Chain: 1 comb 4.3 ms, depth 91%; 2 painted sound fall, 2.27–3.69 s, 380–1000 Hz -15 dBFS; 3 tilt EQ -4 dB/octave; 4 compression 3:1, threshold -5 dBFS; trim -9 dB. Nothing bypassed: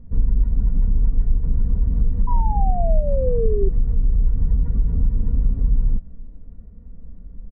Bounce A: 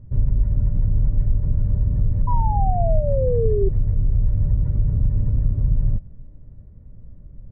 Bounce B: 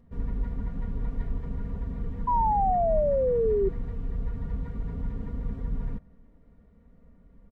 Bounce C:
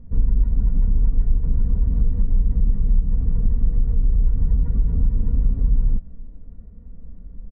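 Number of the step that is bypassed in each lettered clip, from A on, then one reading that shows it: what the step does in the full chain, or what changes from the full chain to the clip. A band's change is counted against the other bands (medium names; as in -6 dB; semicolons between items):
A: 1, 250 Hz band -2.5 dB; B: 3, 125 Hz band -12.0 dB; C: 2, 1 kHz band -23.5 dB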